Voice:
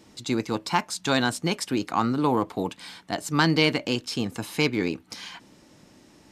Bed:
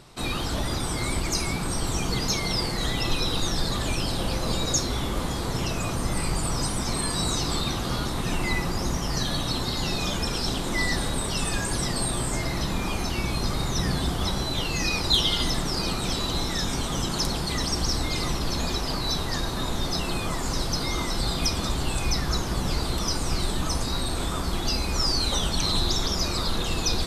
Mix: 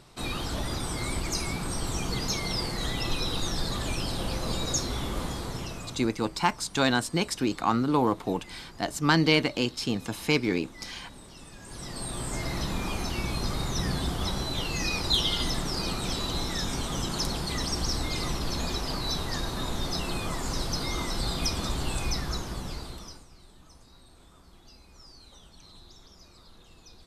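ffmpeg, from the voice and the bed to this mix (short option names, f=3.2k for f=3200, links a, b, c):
-filter_complex "[0:a]adelay=5700,volume=-1dB[a];[1:a]volume=14dB,afade=t=out:st=5.23:d=0.9:silence=0.133352,afade=t=in:st=11.59:d=0.94:silence=0.125893,afade=t=out:st=21.97:d=1.3:silence=0.0630957[b];[a][b]amix=inputs=2:normalize=0"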